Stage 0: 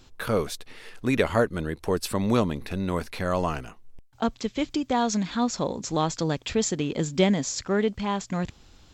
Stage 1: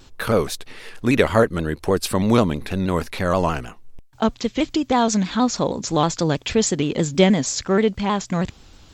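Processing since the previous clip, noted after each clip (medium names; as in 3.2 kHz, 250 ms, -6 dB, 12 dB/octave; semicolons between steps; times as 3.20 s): vibrato with a chosen wave saw down 6.3 Hz, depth 100 cents; trim +6 dB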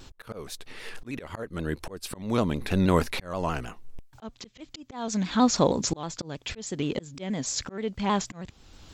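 slow attack 644 ms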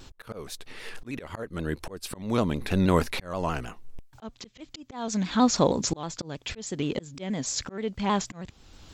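no audible change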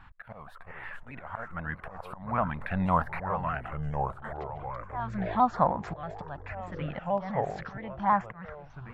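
FFT filter 190 Hz 0 dB, 400 Hz -17 dB, 700 Hz +10 dB, 1.8 kHz +9 dB, 6.2 kHz -29 dB, 11 kHz -19 dB; LFO notch saw up 1.2 Hz 550–5300 Hz; ever faster or slower copies 302 ms, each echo -4 st, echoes 3, each echo -6 dB; trim -5 dB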